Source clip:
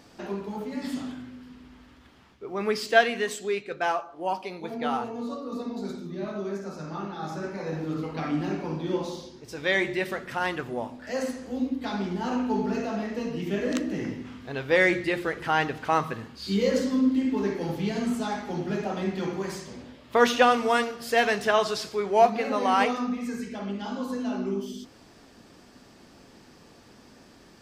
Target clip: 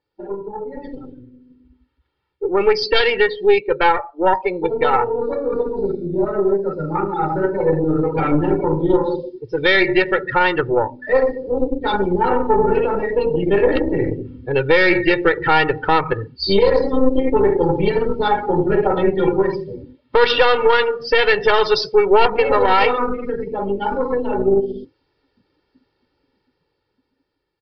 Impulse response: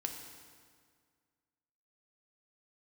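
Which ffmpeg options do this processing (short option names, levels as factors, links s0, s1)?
-filter_complex "[0:a]afftdn=nr=32:nf=-34,aeval=exprs='0.562*(cos(1*acos(clip(val(0)/0.562,-1,1)))-cos(1*PI/2))+0.00631*(cos(4*acos(clip(val(0)/0.562,-1,1)))-cos(4*PI/2))+0.00708*(cos(5*acos(clip(val(0)/0.562,-1,1)))-cos(5*PI/2))+0.0501*(cos(8*acos(clip(val(0)/0.562,-1,1)))-cos(8*PI/2))':c=same,asplit=2[s0][s1];[s1]acompressor=threshold=0.0251:ratio=20,volume=0.841[s2];[s0][s2]amix=inputs=2:normalize=0,aecho=1:1:2.2:0.86,alimiter=limit=0.266:level=0:latency=1:release=139,aresample=11025,aresample=44100,dynaudnorm=f=550:g=7:m=4.47,adynamicequalizer=threshold=0.0282:dfrequency=2400:dqfactor=0.7:tfrequency=2400:tqfactor=0.7:attack=5:release=100:ratio=0.375:range=1.5:mode=boostabove:tftype=highshelf,volume=0.891"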